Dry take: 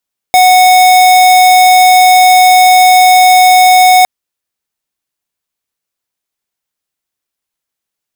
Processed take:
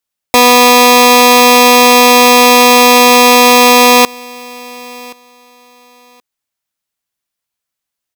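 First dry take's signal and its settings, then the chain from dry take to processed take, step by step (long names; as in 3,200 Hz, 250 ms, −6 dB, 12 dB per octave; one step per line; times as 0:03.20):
tone square 737 Hz −4.5 dBFS 3.71 s
sub-harmonics by changed cycles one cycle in 3, inverted
parametric band 380 Hz −4 dB 0.96 octaves
repeating echo 1,075 ms, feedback 20%, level −23.5 dB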